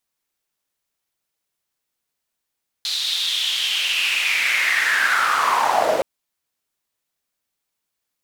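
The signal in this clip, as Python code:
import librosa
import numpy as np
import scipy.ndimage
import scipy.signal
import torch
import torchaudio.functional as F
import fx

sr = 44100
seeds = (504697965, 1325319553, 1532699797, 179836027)

y = fx.riser_noise(sr, seeds[0], length_s=3.17, colour='white', kind='bandpass', start_hz=4000.0, end_hz=500.0, q=5.8, swell_db=13.5, law='linear')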